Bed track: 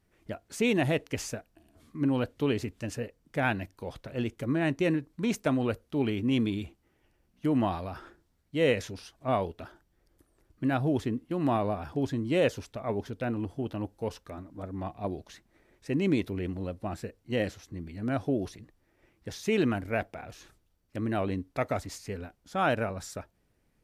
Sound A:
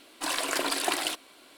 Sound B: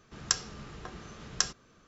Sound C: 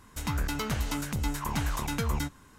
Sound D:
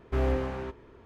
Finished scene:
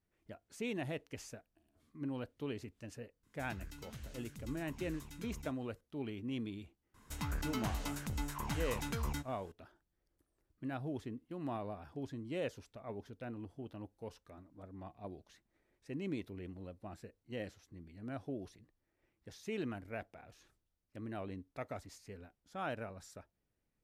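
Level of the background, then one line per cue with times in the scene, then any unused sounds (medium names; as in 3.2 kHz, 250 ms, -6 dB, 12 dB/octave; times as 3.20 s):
bed track -13.5 dB
3.23 s: add C -18 dB + peaking EQ 810 Hz -10 dB 1.7 oct
6.94 s: add C -8.5 dB
not used: A, B, D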